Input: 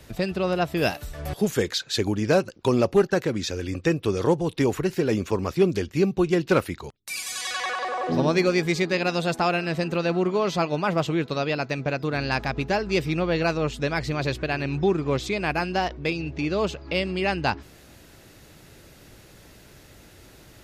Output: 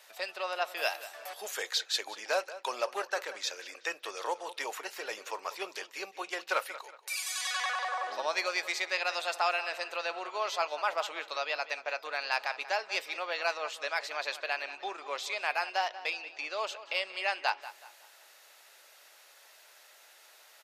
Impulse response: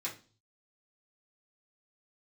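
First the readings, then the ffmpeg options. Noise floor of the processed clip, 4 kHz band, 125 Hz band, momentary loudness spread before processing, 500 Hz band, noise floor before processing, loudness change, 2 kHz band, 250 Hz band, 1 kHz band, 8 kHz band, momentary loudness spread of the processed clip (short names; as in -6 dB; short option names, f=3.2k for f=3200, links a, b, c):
-58 dBFS, -3.0 dB, under -40 dB, 6 LU, -13.5 dB, -51 dBFS, -9.0 dB, -3.5 dB, -30.0 dB, -4.5 dB, -3.5 dB, 8 LU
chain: -filter_complex "[0:a]highpass=f=670:w=0.5412,highpass=f=670:w=1.3066,asoftclip=type=hard:threshold=-13dB,asplit=2[a][b];[b]adelay=186,lowpass=f=4.5k:p=1,volume=-14.5dB,asplit=2[c][d];[d]adelay=186,lowpass=f=4.5k:p=1,volume=0.38,asplit=2[e][f];[f]adelay=186,lowpass=f=4.5k:p=1,volume=0.38,asplit=2[g][h];[h]adelay=186,lowpass=f=4.5k:p=1,volume=0.38[i];[a][c][e][g][i]amix=inputs=5:normalize=0,asplit=2[j][k];[1:a]atrim=start_sample=2205,asetrate=70560,aresample=44100[l];[k][l]afir=irnorm=-1:irlink=0,volume=-12dB[m];[j][m]amix=inputs=2:normalize=0,volume=-4dB"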